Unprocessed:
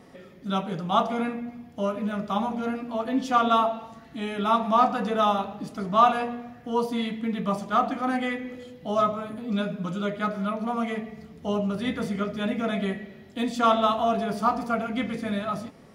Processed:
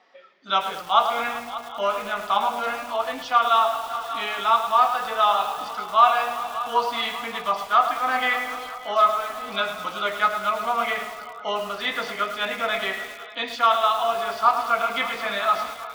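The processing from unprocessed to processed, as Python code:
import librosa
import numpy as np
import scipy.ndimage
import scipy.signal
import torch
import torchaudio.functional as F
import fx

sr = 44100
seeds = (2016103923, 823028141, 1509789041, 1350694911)

p1 = x + fx.echo_heads(x, sr, ms=195, heads='all three', feedback_pct=69, wet_db=-23.0, dry=0)
p2 = fx.rider(p1, sr, range_db=4, speed_s=0.5)
p3 = scipy.signal.sosfilt(scipy.signal.butter(4, 5000.0, 'lowpass', fs=sr, output='sos'), p2)
p4 = fx.noise_reduce_blind(p3, sr, reduce_db=12)
p5 = scipy.signal.sosfilt(scipy.signal.butter(2, 900.0, 'highpass', fs=sr, output='sos'), p4)
p6 = fx.echo_crushed(p5, sr, ms=106, feedback_pct=55, bits=7, wet_db=-9.0)
y = p6 * librosa.db_to_amplitude(8.0)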